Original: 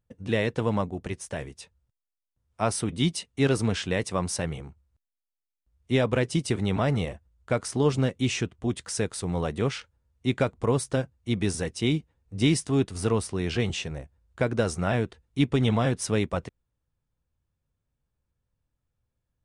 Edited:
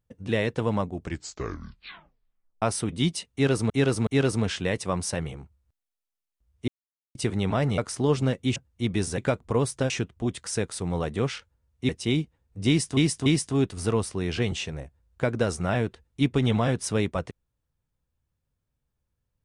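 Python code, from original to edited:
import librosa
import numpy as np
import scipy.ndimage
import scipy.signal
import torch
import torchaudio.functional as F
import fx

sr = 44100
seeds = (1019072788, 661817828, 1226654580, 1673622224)

y = fx.edit(x, sr, fx.tape_stop(start_s=0.9, length_s=1.72),
    fx.repeat(start_s=3.33, length_s=0.37, count=3),
    fx.silence(start_s=5.94, length_s=0.47),
    fx.cut(start_s=7.04, length_s=0.5),
    fx.swap(start_s=8.32, length_s=1.99, other_s=11.03, other_length_s=0.62),
    fx.repeat(start_s=12.44, length_s=0.29, count=3), tone=tone)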